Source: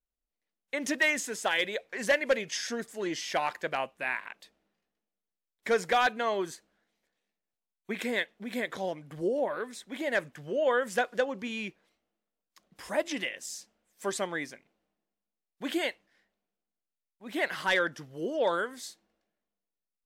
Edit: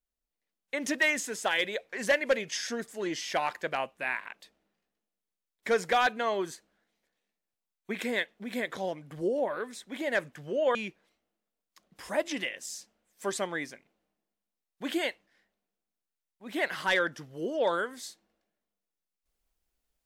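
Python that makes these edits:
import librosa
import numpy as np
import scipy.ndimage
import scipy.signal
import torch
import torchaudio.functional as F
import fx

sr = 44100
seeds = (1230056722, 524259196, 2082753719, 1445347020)

y = fx.edit(x, sr, fx.cut(start_s=10.75, length_s=0.8), tone=tone)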